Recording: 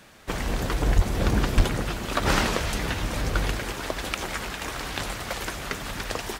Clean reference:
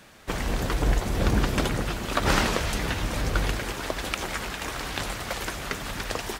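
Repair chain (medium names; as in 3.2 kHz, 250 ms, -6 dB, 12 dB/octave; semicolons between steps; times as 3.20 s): clip repair -10.5 dBFS; 0.95–1.07 s: high-pass 140 Hz 24 dB/octave; 1.56–1.68 s: high-pass 140 Hz 24 dB/octave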